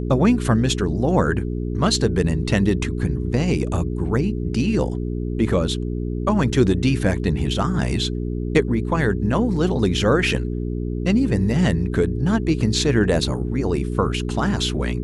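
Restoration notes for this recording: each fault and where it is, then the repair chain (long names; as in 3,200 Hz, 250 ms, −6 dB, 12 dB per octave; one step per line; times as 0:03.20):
mains hum 60 Hz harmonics 7 −25 dBFS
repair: hum removal 60 Hz, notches 7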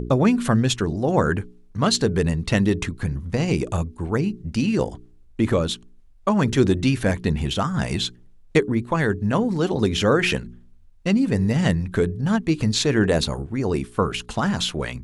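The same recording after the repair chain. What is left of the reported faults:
none of them is left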